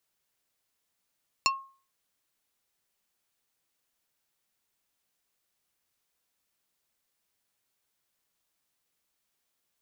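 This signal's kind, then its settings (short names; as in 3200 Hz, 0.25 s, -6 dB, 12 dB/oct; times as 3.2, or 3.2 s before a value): wood hit plate, lowest mode 1080 Hz, decay 0.40 s, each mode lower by 0 dB, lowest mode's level -21 dB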